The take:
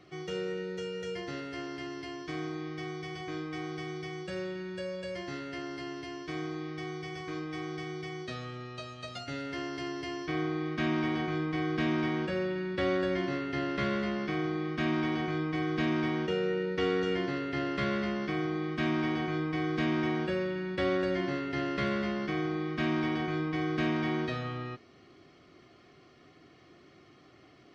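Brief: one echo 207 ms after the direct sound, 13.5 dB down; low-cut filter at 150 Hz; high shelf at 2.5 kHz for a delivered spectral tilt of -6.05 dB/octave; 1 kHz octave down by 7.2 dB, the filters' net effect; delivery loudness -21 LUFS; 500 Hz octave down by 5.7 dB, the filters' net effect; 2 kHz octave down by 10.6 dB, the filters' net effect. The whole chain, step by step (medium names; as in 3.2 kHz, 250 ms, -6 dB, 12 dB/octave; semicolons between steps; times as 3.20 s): high-pass 150 Hz; peaking EQ 500 Hz -7 dB; peaking EQ 1 kHz -3.5 dB; peaking EQ 2 kHz -9 dB; treble shelf 2.5 kHz -6 dB; delay 207 ms -13.5 dB; trim +17 dB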